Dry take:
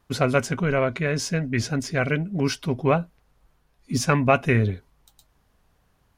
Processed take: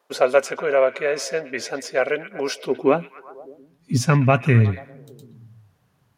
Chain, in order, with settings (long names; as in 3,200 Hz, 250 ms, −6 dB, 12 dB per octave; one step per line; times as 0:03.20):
high-pass filter sweep 510 Hz → 120 Hz, 0:02.48–0:03.71
echo through a band-pass that steps 121 ms, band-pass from 2,700 Hz, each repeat −0.7 octaves, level −12 dB